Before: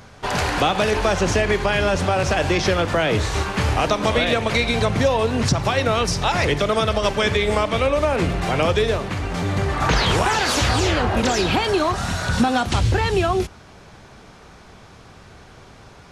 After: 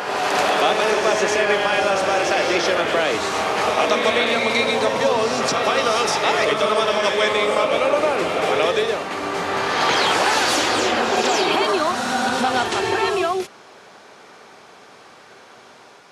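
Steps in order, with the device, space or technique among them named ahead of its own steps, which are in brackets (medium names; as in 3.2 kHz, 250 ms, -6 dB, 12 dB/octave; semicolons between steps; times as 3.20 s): ghost voice (reverse; reverberation RT60 2.4 s, pre-delay 99 ms, DRR 0.5 dB; reverse; high-pass 360 Hz 12 dB/octave)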